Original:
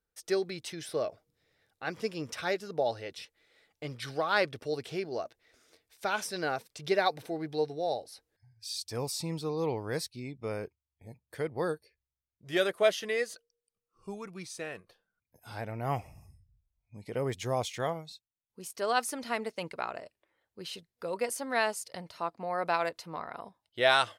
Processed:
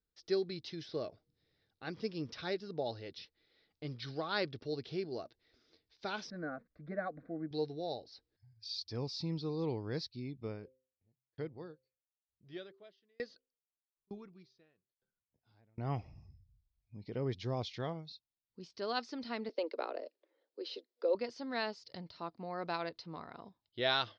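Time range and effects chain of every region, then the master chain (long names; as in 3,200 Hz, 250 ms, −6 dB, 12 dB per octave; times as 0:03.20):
0:06.30–0:07.51: low-pass filter 2,000 Hz 24 dB per octave + low-shelf EQ 170 Hz +7 dB + phaser with its sweep stopped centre 590 Hz, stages 8
0:10.47–0:15.78: high-frequency loss of the air 61 metres + hum removal 129.9 Hz, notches 4 + tremolo with a ramp in dB decaying 1.1 Hz, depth 39 dB
0:19.49–0:21.15: Butterworth high-pass 250 Hz 72 dB per octave + parametric band 520 Hz +14 dB 0.76 octaves
whole clip: Butterworth low-pass 5,100 Hz 48 dB per octave; flat-topped bell 1,200 Hz −8 dB 2.9 octaves; level −1.5 dB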